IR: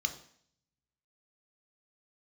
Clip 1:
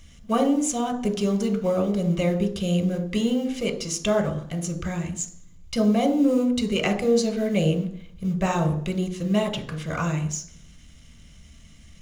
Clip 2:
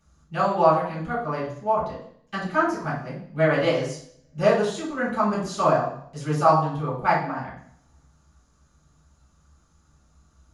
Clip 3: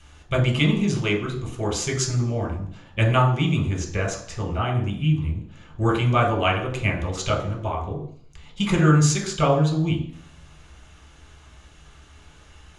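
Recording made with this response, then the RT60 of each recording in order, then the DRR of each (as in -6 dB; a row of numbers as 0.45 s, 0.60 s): 1; 0.60 s, 0.60 s, 0.60 s; 6.0 dB, -10.5 dB, -0.5 dB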